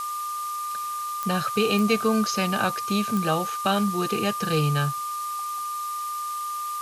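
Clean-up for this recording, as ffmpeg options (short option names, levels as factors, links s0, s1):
-af "adeclick=t=4,bandreject=f=1200:w=30,afftdn=nr=30:nf=-31"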